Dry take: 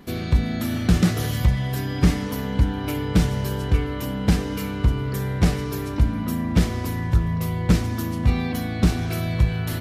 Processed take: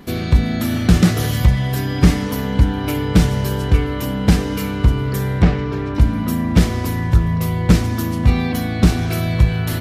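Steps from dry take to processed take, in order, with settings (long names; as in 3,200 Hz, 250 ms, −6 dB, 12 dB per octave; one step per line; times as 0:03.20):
0:05.42–0:05.95: low-pass filter 2,800 Hz 12 dB per octave
level +5.5 dB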